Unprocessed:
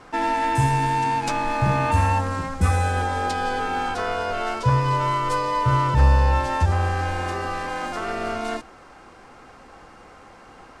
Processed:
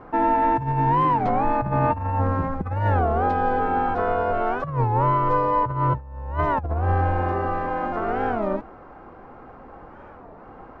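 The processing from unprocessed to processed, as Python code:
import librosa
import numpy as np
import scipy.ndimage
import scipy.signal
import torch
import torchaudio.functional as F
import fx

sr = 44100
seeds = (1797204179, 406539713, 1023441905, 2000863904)

y = scipy.signal.sosfilt(scipy.signal.butter(2, 1100.0, 'lowpass', fs=sr, output='sos'), x)
y = fx.over_compress(y, sr, threshold_db=-23.0, ratio=-0.5)
y = fx.record_warp(y, sr, rpm=33.33, depth_cents=250.0)
y = y * librosa.db_to_amplitude(2.5)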